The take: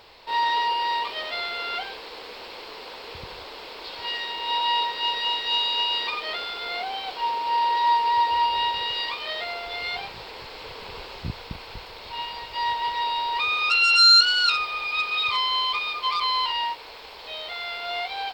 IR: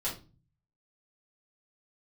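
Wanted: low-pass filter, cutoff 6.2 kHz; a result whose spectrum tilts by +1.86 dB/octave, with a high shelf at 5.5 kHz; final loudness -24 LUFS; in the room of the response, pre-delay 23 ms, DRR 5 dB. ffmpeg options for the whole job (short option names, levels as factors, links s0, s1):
-filter_complex "[0:a]lowpass=6200,highshelf=f=5500:g=-9,asplit=2[s0][s1];[1:a]atrim=start_sample=2205,adelay=23[s2];[s1][s2]afir=irnorm=-1:irlink=0,volume=0.355[s3];[s0][s3]amix=inputs=2:normalize=0,volume=0.944"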